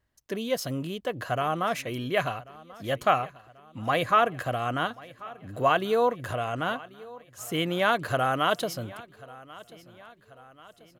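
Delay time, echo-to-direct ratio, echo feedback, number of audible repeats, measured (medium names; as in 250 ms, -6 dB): 1088 ms, -19.0 dB, 52%, 3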